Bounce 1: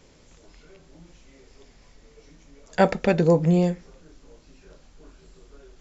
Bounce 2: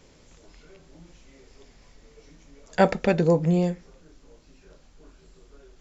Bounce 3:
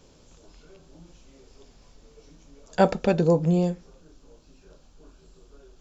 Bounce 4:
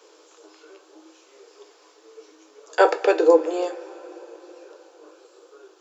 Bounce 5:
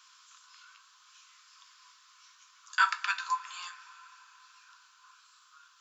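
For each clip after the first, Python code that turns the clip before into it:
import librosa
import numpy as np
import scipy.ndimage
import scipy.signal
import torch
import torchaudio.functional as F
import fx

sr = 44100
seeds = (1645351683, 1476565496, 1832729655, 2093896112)

y1 = fx.rider(x, sr, range_db=10, speed_s=0.5)
y2 = fx.peak_eq(y1, sr, hz=2000.0, db=-10.0, octaves=0.45)
y3 = scipy.signal.sosfilt(scipy.signal.cheby1(6, 6, 310.0, 'highpass', fs=sr, output='sos'), y2)
y3 = fx.rev_double_slope(y3, sr, seeds[0], early_s=0.24, late_s=5.0, knee_db=-20, drr_db=8.0)
y3 = y3 * 10.0 ** (9.0 / 20.0)
y4 = scipy.signal.sosfilt(scipy.signal.cheby1(6, 3, 1000.0, 'highpass', fs=sr, output='sos'), y3)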